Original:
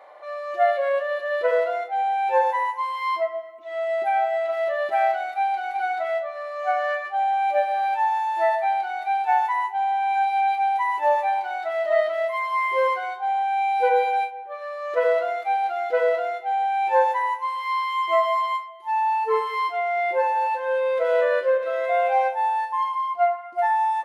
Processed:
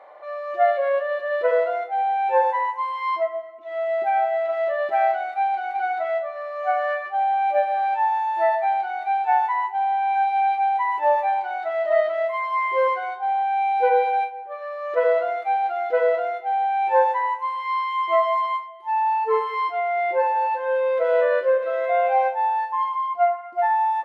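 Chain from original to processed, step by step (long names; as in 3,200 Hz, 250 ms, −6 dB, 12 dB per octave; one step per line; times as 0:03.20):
low-pass filter 2,200 Hz 6 dB per octave
level +1.5 dB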